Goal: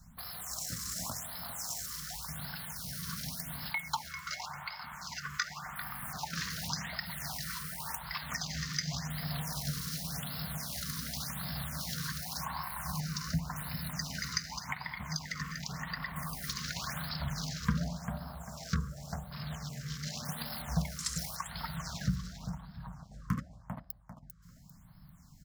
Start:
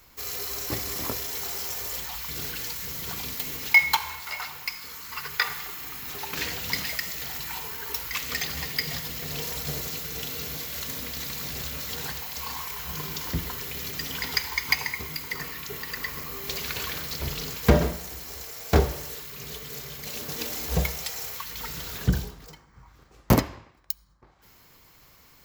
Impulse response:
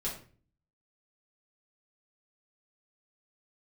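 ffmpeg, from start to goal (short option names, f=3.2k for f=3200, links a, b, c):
-filter_complex "[0:a]acompressor=threshold=-49dB:ratio=2.5,afwtdn=0.00224,firequalizer=gain_entry='entry(110,0);entry(160,10);entry(250,-1);entry(360,-25);entry(640,4);entry(1600,4);entry(2400,-7);entry(5500,7);entry(8500,10);entry(13000,-3)':delay=0.05:min_phase=1,dynaudnorm=f=380:g=17:m=3dB,asettb=1/sr,asplit=3[a][b][c];[a]atrim=end=12.184[d];[b]atrim=start=12.18:end=14.84,asetpts=PTS-STARTPTS,afade=t=in:d=0.004:c=qsin,afade=t=out:st=2.656:d=0.004:c=qsin,bandreject=f=3.3k:w=5.3[e];[c]atrim=start=14.836[f];[d][e]acrossfade=d=0.004:c1=hsin:c2=qsin[g];[g][f]acrossfade=d=0.004:c1=qsin:c2=hsin,aecho=1:1:396|792|1188|1584:0.355|0.121|0.041|0.0139,afftfilt=real='re*(1-between(b*sr/1024,690*pow(7700/690,0.5+0.5*sin(2*PI*0.89*pts/sr))/1.41,690*pow(7700/690,0.5+0.5*sin(2*PI*0.89*pts/sr))*1.41))':imag='im*(1-between(b*sr/1024,690*pow(7700/690,0.5+0.5*sin(2*PI*0.89*pts/sr))/1.41,690*pow(7700/690,0.5+0.5*sin(2*PI*0.89*pts/sr))*1.41))':win_size=1024:overlap=0.75,volume=4.5dB"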